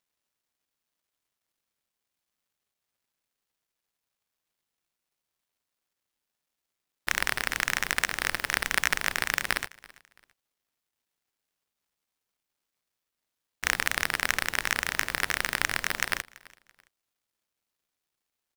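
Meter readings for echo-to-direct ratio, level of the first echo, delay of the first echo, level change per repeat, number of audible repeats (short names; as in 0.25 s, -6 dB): -22.5 dB, -23.0 dB, 0.334 s, -10.0 dB, 2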